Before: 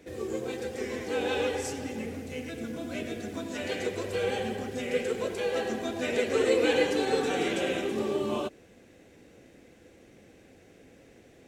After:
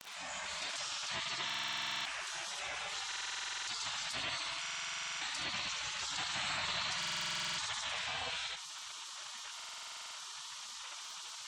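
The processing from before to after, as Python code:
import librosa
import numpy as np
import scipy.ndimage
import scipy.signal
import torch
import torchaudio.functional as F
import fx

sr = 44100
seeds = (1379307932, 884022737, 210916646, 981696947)

y = fx.fade_in_head(x, sr, length_s=0.67)
y = np.clip(y, -10.0 ** (-18.0 / 20.0), 10.0 ** (-18.0 / 20.0))
y = scipy.signal.sosfilt(scipy.signal.butter(2, 6100.0, 'lowpass', fs=sr, output='sos'), y)
y = fx.hum_notches(y, sr, base_hz=50, count=4)
y = y + 10.0 ** (-5.5 / 20.0) * np.pad(y, (int(71 * sr / 1000.0), 0))[:len(y)]
y = fx.spec_gate(y, sr, threshold_db=-25, keep='weak')
y = fx.dynamic_eq(y, sr, hz=4600.0, q=2.4, threshold_db=-56.0, ratio=4.0, max_db=3)
y = fx.dmg_crackle(y, sr, seeds[0], per_s=40.0, level_db=-66.0)
y = fx.low_shelf(y, sr, hz=100.0, db=-11.5)
y = fx.spec_gate(y, sr, threshold_db=-30, keep='strong')
y = fx.buffer_glitch(y, sr, at_s=(1.45, 3.07, 4.61, 6.98, 9.55), block=2048, repeats=12)
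y = fx.env_flatten(y, sr, amount_pct=70)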